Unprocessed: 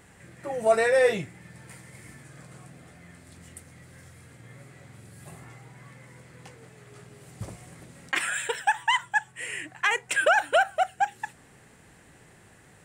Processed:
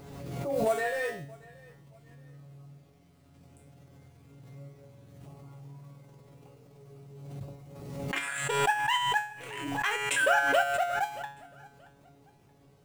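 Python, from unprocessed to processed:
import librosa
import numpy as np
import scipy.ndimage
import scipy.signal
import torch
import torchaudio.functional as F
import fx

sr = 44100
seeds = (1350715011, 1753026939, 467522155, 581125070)

y = fx.wiener(x, sr, points=25)
y = fx.comb_fb(y, sr, f0_hz=79.0, decay_s=0.17, harmonics='all', damping=0.0, mix_pct=70, at=(0.74, 3.41))
y = fx.quant_companded(y, sr, bits=6)
y = fx.comb_fb(y, sr, f0_hz=140.0, decay_s=0.47, harmonics='all', damping=0.0, mix_pct=90)
y = fx.echo_feedback(y, sr, ms=627, feedback_pct=34, wet_db=-23)
y = fx.pre_swell(y, sr, db_per_s=37.0)
y = y * librosa.db_to_amplitude(8.0)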